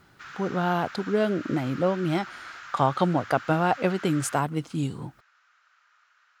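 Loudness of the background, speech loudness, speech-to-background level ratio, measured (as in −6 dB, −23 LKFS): −41.5 LKFS, −26.5 LKFS, 15.0 dB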